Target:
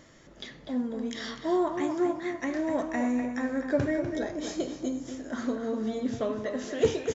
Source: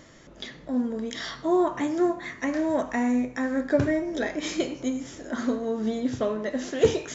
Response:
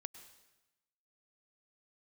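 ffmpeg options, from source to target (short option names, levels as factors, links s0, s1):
-filter_complex "[0:a]asettb=1/sr,asplit=3[s0][s1][s2];[s0]atrim=end=4.174[s3];[s1]atrim=start=4.17:end=5.08,asetpts=PTS-STARTPTS,afade=t=in:d=0.004:c=qsin,afade=t=out:st=0.906:d=0.004:c=qsin,equalizer=f=2300:t=o:w=0.92:g=-10.5[s4];[s2]atrim=start=5.076[s5];[s3][s4]acrossfade=d=0.004:c1=hsin:c2=qsin[s6];[s6][s5]acrossfade=d=0.004:c1=qsin:c2=hsin,asplit=2[s7][s8];[s8]adelay=247,lowpass=f=4200:p=1,volume=0.422,asplit=2[s9][s10];[s10]adelay=247,lowpass=f=4200:p=1,volume=0.26,asplit=2[s11][s12];[s12]adelay=247,lowpass=f=4200:p=1,volume=0.26[s13];[s7][s9][s11][s13]amix=inputs=4:normalize=0,volume=0.631"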